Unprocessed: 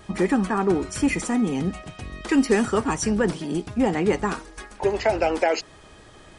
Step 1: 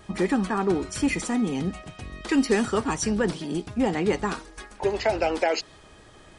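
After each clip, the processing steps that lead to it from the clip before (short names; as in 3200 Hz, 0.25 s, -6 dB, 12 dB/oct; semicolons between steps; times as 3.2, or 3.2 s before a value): dynamic EQ 4000 Hz, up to +5 dB, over -47 dBFS, Q 1.6; gain -2.5 dB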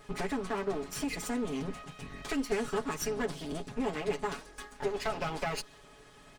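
minimum comb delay 7.1 ms; compressor 2:1, threshold -30 dBFS, peak gain reduction 7.5 dB; comb 4.7 ms, depth 41%; gain -4 dB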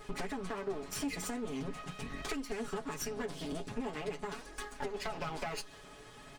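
compressor 4:1, threshold -39 dBFS, peak gain reduction 11.5 dB; flange 0.43 Hz, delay 2.2 ms, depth 9.1 ms, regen +60%; gain +7 dB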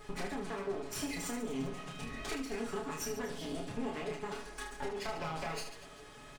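reverse bouncing-ball echo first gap 30 ms, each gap 1.5×, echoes 5; gain -2 dB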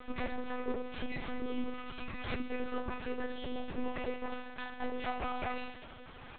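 monotone LPC vocoder at 8 kHz 250 Hz; gain +2.5 dB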